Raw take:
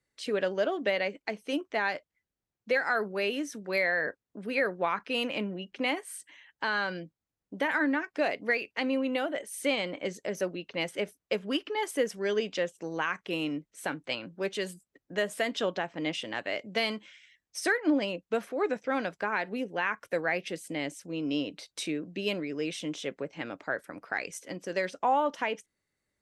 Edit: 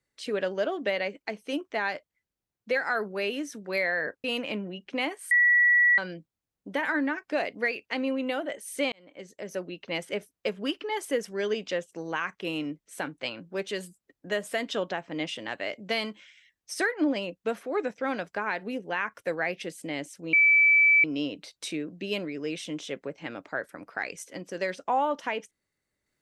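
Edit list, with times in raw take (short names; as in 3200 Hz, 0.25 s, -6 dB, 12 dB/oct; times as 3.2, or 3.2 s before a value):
4.24–5.1 cut
6.17–6.84 bleep 1940 Hz -17 dBFS
9.78–10.67 fade in
21.19 add tone 2310 Hz -16 dBFS 0.71 s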